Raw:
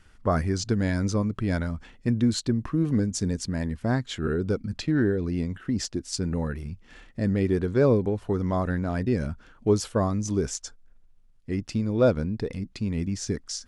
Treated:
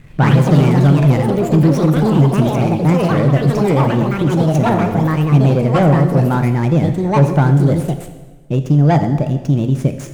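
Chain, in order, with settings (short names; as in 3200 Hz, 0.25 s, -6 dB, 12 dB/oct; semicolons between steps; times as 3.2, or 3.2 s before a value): median filter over 15 samples; in parallel at -1 dB: compressor, threshold -35 dBFS, peak gain reduction 18 dB; on the sum: echoes that change speed 95 ms, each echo +4 st, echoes 3; reverb RT60 1.7 s, pre-delay 7 ms, DRR 7.5 dB; soft clip -15.5 dBFS, distortion -15 dB; bell 110 Hz +12.5 dB 0.72 oct; speed mistake 33 rpm record played at 45 rpm; gain +6 dB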